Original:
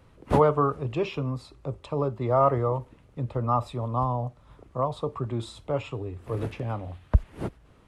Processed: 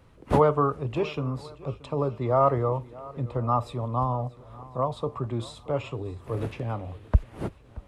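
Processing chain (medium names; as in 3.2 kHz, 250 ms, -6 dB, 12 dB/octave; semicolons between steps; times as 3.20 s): shuffle delay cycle 1046 ms, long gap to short 1.5:1, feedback 31%, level -20.5 dB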